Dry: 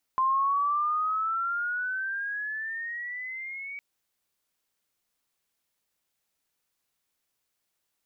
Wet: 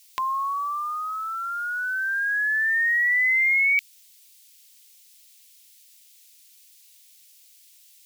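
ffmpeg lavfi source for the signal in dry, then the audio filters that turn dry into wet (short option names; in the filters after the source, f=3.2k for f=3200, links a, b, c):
-f lavfi -i "aevalsrc='pow(10,(-21-14.5*t/3.61)/20)*sin(2*PI*1040*3.61/(13.5*log(2)/12)*(exp(13.5*log(2)/12*t/3.61)-1))':d=3.61:s=44100"
-af "bandreject=f=60:t=h:w=6,bandreject=f=120:t=h:w=6,bandreject=f=180:t=h:w=6,bandreject=f=240:t=h:w=6,aexciter=amount=15.9:drive=3.3:freq=2k"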